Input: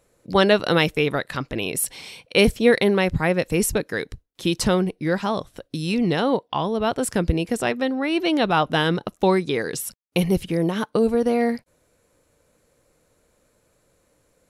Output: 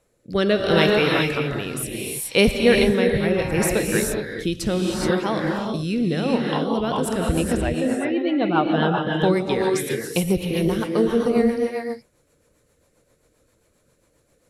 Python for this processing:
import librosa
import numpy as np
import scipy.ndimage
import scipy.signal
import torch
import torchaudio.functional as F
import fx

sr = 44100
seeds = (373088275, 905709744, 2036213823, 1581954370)

y = fx.spec_expand(x, sr, power=1.5, at=(7.56, 9.16), fade=0.02)
y = fx.rev_gated(y, sr, seeds[0], gate_ms=450, shape='rising', drr_db=0.0)
y = fx.rotary_switch(y, sr, hz=0.7, then_hz=7.5, switch_at_s=6.21)